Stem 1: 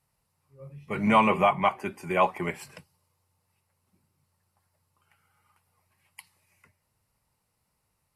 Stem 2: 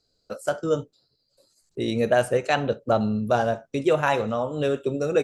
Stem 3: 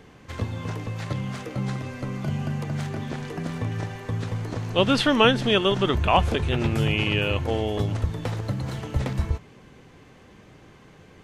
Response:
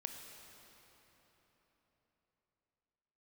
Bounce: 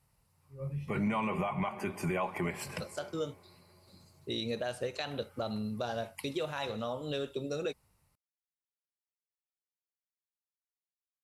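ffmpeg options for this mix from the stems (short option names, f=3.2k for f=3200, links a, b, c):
-filter_complex "[0:a]alimiter=limit=-18dB:level=0:latency=1:release=187,dynaudnorm=f=210:g=7:m=5.5dB,volume=0.5dB,asplit=2[a][b];[b]volume=-17dB[c];[1:a]equalizer=f=4k:t=o:w=0.9:g=13,acompressor=threshold=-21dB:ratio=6,adelay=2500,volume=-9.5dB[d];[a]lowshelf=f=170:g=7,acompressor=threshold=-30dB:ratio=5,volume=0dB[e];[3:a]atrim=start_sample=2205[f];[c][f]afir=irnorm=-1:irlink=0[g];[d][e][g]amix=inputs=3:normalize=0,alimiter=limit=-24dB:level=0:latency=1:release=39"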